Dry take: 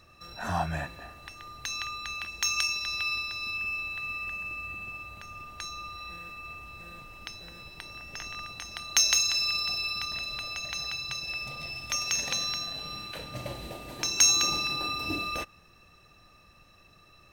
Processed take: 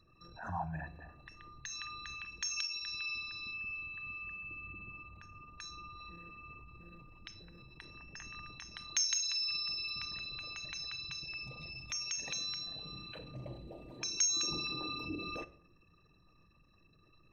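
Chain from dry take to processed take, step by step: formant sharpening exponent 2; shoebox room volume 940 m³, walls furnished, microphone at 0.59 m; gain -9 dB

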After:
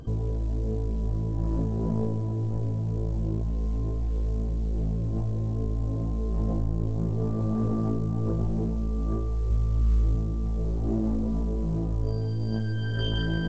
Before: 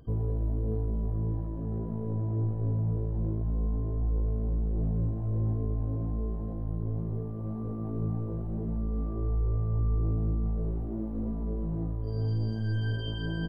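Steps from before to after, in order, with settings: 9.5–10.15 bell 65 Hz +15 dB 0.65 oct; in parallel at +2 dB: negative-ratio compressor -34 dBFS, ratio -0.5; on the sum: soft clip -16 dBFS, distortion -19 dB; on a send at -21.5 dB: reverb RT60 0.45 s, pre-delay 56 ms; on the sum: A-law 128 kbps 16000 Hz

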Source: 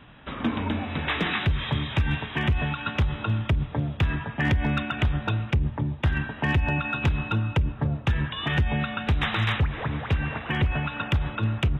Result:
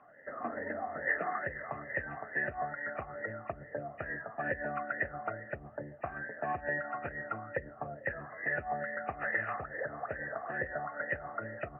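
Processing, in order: nonlinear frequency compression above 1700 Hz 4:1; vowel sweep a-e 2.3 Hz; gain +5 dB

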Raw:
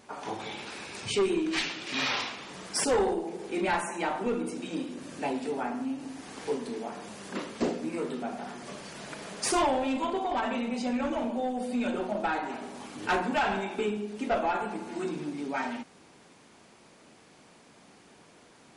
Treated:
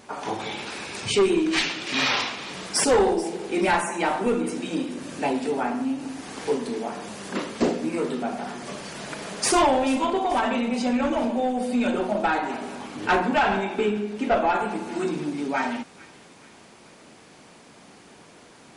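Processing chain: 12.75–14.5 high shelf 6000 Hz -8 dB; thin delay 0.434 s, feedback 50%, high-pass 1900 Hz, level -17 dB; gain +6.5 dB

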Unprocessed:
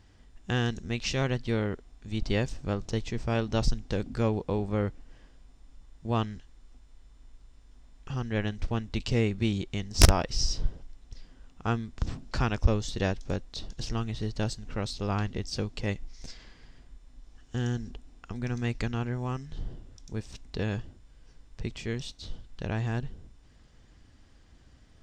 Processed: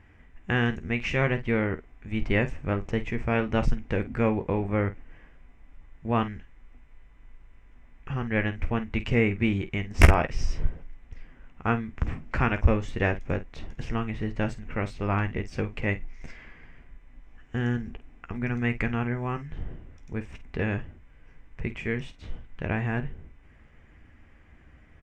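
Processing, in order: resonant high shelf 3100 Hz -11.5 dB, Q 3; early reflections 13 ms -10.5 dB, 50 ms -13.5 dB; gain +2.5 dB

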